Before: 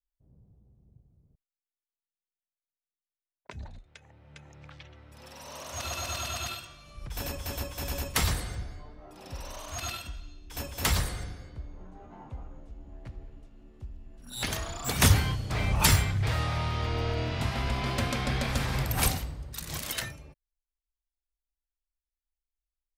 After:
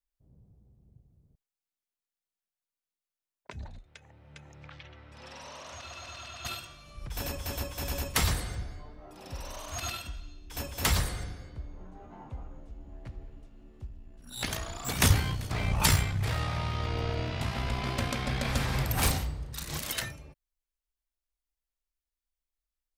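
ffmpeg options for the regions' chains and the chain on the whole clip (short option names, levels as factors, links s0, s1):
-filter_complex "[0:a]asettb=1/sr,asplit=3[s0][s1][s2];[s0]atrim=end=4.644[s3];[s1]atrim=start=4.64:end=6.45,asetpts=PTS-STARTPTS,afade=t=in:d=0.004:c=qsin,afade=t=out:st=1.806:d=0.004:c=qsin,lowpass=6500,equalizer=f=2000:w=0.45:g=4,acompressor=threshold=0.00891:ratio=6:attack=3.2:release=140:knee=1:detection=peak[s4];[s2]atrim=start=6.446[s5];[s3][s4]acrossfade=d=0.004:c1=hsin:c2=qsin[s6];[s6][s5]acrossfade=d=0.004:c1=qsin:c2=hsin,asettb=1/sr,asplit=3[s7][s8][s9];[s7]atrim=end=13.874[s10];[s8]atrim=start=13.87:end=18.45,asetpts=PTS-STARTPTS,afade=t=in:d=0.004:c=qsin,afade=t=out:st=4.576:d=0.004:c=qsin,tremolo=f=59:d=0.462,aecho=1:1:390:0.075,atrim=end_sample=201978[s11];[s9]atrim=start=18.446[s12];[s10][s11]acrossfade=d=0.004:c1=hsin:c2=qsin[s13];[s13][s12]acrossfade=d=0.004:c1=qsin:c2=hsin,asettb=1/sr,asplit=3[s14][s15][s16];[s14]atrim=end=19.004[s17];[s15]atrim=start=19:end=19.79,asetpts=PTS-STARTPTS,afade=t=in:d=0.004:c=qsin,afade=t=out:st=0.786:d=0.004:c=qsin,highshelf=f=11000:g=-5,aeval=exprs='0.112*(abs(mod(val(0)/0.112+3,4)-2)-1)':c=same,asplit=2[s18][s19];[s19]adelay=34,volume=0.562[s20];[s18][s20]amix=inputs=2:normalize=0,atrim=end_sample=34839[s21];[s16]atrim=start=19.786[s22];[s17][s21]acrossfade=d=0.004:c1=hsin:c2=qsin[s23];[s23][s22]acrossfade=d=0.004:c1=qsin:c2=hsin"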